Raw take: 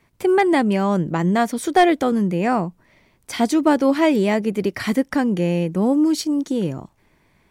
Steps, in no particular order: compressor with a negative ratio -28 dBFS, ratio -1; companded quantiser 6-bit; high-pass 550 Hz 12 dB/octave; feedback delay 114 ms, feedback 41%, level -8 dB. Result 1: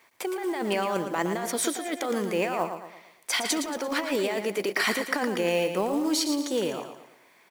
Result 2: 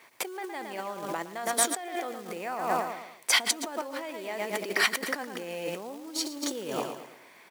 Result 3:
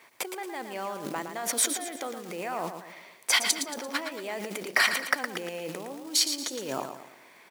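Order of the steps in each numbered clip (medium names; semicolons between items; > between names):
high-pass > compressor with a negative ratio > companded quantiser > feedback delay; feedback delay > compressor with a negative ratio > companded quantiser > high-pass; compressor with a negative ratio > feedback delay > companded quantiser > high-pass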